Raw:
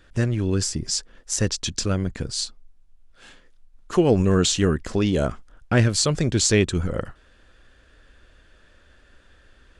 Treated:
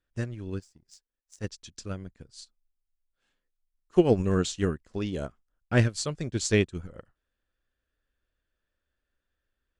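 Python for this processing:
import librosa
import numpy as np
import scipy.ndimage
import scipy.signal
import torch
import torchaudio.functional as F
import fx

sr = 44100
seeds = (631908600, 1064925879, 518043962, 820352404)

y = fx.power_curve(x, sr, exponent=1.4, at=(0.59, 1.44))
y = fx.upward_expand(y, sr, threshold_db=-32.0, expansion=2.5)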